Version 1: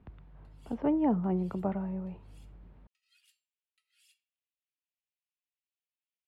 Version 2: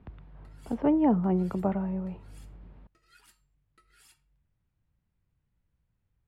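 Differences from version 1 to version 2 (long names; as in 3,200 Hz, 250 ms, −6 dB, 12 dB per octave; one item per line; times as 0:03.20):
speech +4.0 dB
background: remove four-pole ladder high-pass 2,400 Hz, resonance 50%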